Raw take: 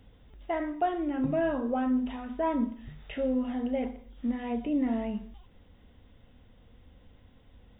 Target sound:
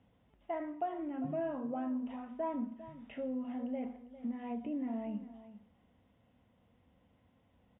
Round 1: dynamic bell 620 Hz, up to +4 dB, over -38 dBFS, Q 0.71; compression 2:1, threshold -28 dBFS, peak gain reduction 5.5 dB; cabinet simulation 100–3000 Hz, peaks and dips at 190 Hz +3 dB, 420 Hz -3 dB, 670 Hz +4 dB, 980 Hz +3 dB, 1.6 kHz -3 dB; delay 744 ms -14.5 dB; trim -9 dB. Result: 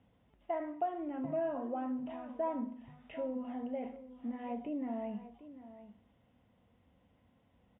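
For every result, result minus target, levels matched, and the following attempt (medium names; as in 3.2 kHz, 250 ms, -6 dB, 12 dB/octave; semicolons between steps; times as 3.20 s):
echo 343 ms late; 125 Hz band -2.5 dB
dynamic bell 620 Hz, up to +4 dB, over -38 dBFS, Q 0.71; compression 2:1, threshold -28 dBFS, peak gain reduction 5.5 dB; cabinet simulation 100–3000 Hz, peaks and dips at 190 Hz +3 dB, 420 Hz -3 dB, 670 Hz +4 dB, 980 Hz +3 dB, 1.6 kHz -3 dB; delay 401 ms -14.5 dB; trim -9 dB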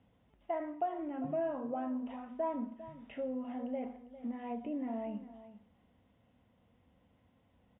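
125 Hz band -2.5 dB
dynamic bell 170 Hz, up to +4 dB, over -38 dBFS, Q 0.71; compression 2:1, threshold -28 dBFS, peak gain reduction 4.5 dB; cabinet simulation 100–3000 Hz, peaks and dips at 190 Hz +3 dB, 420 Hz -3 dB, 670 Hz +4 dB, 980 Hz +3 dB, 1.6 kHz -3 dB; delay 401 ms -14.5 dB; trim -9 dB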